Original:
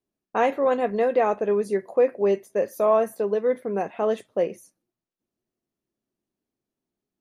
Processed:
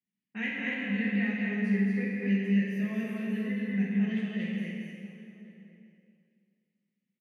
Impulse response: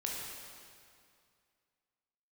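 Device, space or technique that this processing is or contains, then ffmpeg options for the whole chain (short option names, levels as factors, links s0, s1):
stadium PA: -filter_complex "[0:a]highpass=230,firequalizer=gain_entry='entry(110,0);entry(190,11);entry(290,-14);entry(530,-30);entry(1200,-29);entry(1900,3);entry(3200,-10);entry(4700,-12);entry(7200,-20);entry(14000,-23)':delay=0.05:min_phase=1,equalizer=f=3000:t=o:w=0.22:g=7.5,asplit=2[s0][s1];[s1]adelay=1050,volume=0.126,highshelf=f=4000:g=-23.6[s2];[s0][s2]amix=inputs=2:normalize=0,aecho=1:1:230.3|279.9:0.708|0.355[s3];[1:a]atrim=start_sample=2205[s4];[s3][s4]afir=irnorm=-1:irlink=0"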